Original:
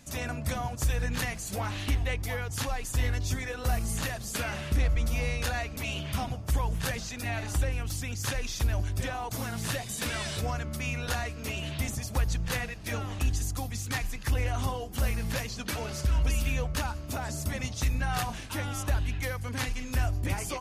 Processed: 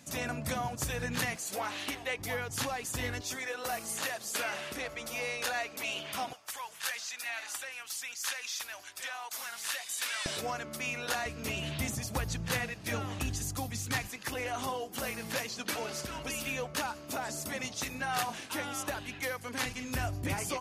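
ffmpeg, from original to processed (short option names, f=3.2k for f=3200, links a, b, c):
-af "asetnsamples=n=441:p=0,asendcmd='1.36 highpass f 360;2.19 highpass f 160;3.21 highpass f 400;6.33 highpass f 1200;10.26 highpass f 290;11.26 highpass f 110;14.08 highpass f 260;19.66 highpass f 120',highpass=140"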